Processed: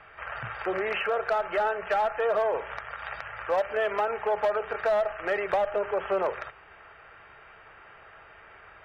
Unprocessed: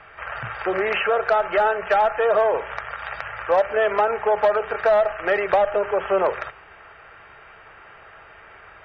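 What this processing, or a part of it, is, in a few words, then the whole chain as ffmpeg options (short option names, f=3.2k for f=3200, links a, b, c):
limiter into clipper: -filter_complex "[0:a]asettb=1/sr,asplit=3[a][b][c];[a]atrim=end=3.534[d];[b]atrim=start=3.53:end=4.34,asetpts=PTS-STARTPTS,afade=t=in:d=0.004:c=qsin,afade=t=out:st=0.806:d=0.004:c=qsin,aemphasis=mode=production:type=50fm[e];[c]atrim=start=4.336[f];[d][e]acrossfade=d=0.004:c1=hsin:c2=qsin[g];[g][f]acrossfade=d=0.004:c1=qsin:c2=hsin,alimiter=limit=-13.5dB:level=0:latency=1:release=307,asoftclip=type=hard:threshold=-14.5dB,volume=-5dB"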